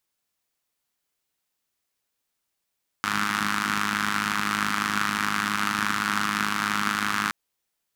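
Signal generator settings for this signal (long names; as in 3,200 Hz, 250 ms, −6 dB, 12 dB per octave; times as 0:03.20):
pulse-train model of a four-cylinder engine, steady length 4.27 s, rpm 3,100, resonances 220/1,300 Hz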